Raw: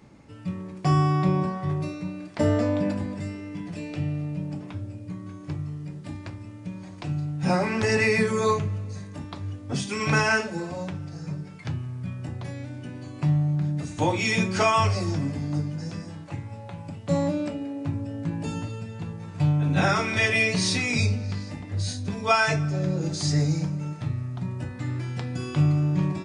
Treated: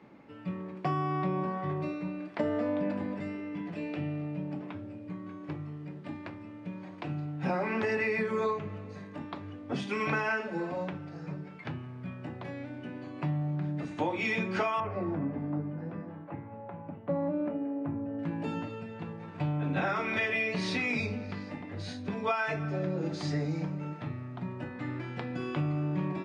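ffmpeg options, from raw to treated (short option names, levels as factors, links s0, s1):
-filter_complex "[0:a]asettb=1/sr,asplit=3[s0][s1][s2];[s0]atrim=end=14.804[s3];[s1]atrim=start=14.8:end=18.19,asetpts=PTS-STARTPTS,afade=t=in:d=0.004:c=qsin,afade=t=out:st=3.386:d=0.004:c=qsin,lowpass=1400[s4];[s2]atrim=start=18.186[s5];[s3][s4]acrossfade=d=0.004:c1=hsin:c2=qsin[s6];[s6][s5]acrossfade=d=0.004:c1=qsin:c2=hsin,acrossover=split=180 3400:gain=0.141 1 0.0794[s7][s8][s9];[s7][s8][s9]amix=inputs=3:normalize=0,acompressor=threshold=0.0447:ratio=6"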